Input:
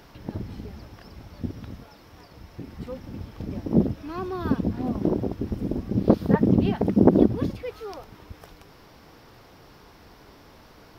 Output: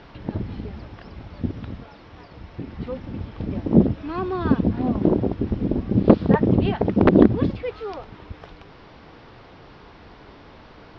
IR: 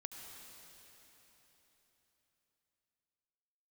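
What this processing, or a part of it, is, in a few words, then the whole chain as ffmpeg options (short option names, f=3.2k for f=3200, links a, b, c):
synthesiser wavefolder: -filter_complex "[0:a]aeval=exprs='0.501*(abs(mod(val(0)/0.501+3,4)-2)-1)':c=same,lowpass=f=4.1k:w=0.5412,lowpass=f=4.1k:w=1.3066,asettb=1/sr,asplit=3[a][b][c];[a]atrim=end=6.324[d];[b]atrim=start=6.32:end=7.12,asetpts=PTS-STARTPTS,afade=t=in:d=0.004:c=qsin,afade=t=out:st=0.796:d=0.004:c=qsin,equalizer=f=220:t=o:w=1.3:g=-6[e];[c]atrim=start=7.116[f];[d][e]acrossfade=d=0.004:c1=hsin:c2=qsin[g];[g][f]acrossfade=d=0.004:c1=qsin:c2=hsin,volume=5dB"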